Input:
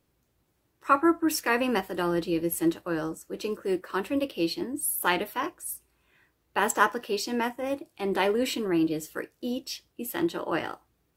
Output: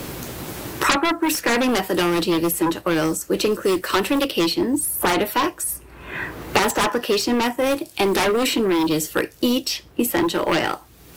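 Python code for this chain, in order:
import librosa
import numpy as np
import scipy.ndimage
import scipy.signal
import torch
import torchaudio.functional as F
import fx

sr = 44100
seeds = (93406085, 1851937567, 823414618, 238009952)

y = fx.fold_sine(x, sr, drive_db=16, ceiling_db=-7.0)
y = fx.quant_companded(y, sr, bits=8)
y = fx.band_squash(y, sr, depth_pct=100)
y = F.gain(torch.from_numpy(y), -8.0).numpy()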